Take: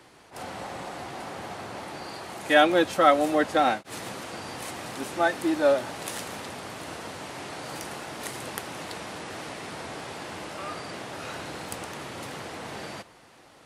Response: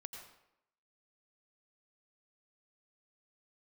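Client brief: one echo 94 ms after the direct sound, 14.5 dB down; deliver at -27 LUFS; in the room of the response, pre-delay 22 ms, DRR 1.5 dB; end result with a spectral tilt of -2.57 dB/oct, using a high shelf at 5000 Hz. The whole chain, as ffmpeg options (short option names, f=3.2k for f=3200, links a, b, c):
-filter_complex "[0:a]highshelf=f=5k:g=-5,aecho=1:1:94:0.188,asplit=2[a][b];[1:a]atrim=start_sample=2205,adelay=22[c];[b][c]afir=irnorm=-1:irlink=0,volume=2.5dB[d];[a][d]amix=inputs=2:normalize=0"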